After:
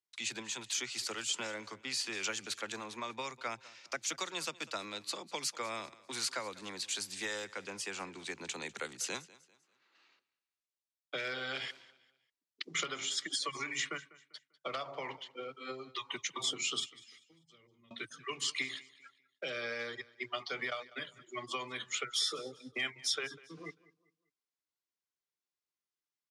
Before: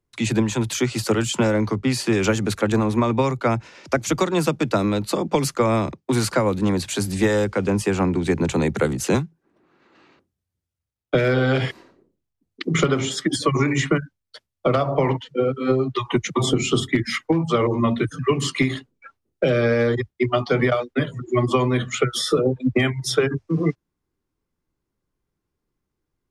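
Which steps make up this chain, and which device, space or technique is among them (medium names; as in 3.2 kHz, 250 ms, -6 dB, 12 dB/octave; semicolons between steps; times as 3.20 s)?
16.86–17.91 s: amplifier tone stack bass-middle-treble 10-0-1; piezo pickup straight into a mixer (low-pass 5.1 kHz 12 dB/octave; differentiator); feedback delay 197 ms, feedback 35%, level -20.5 dB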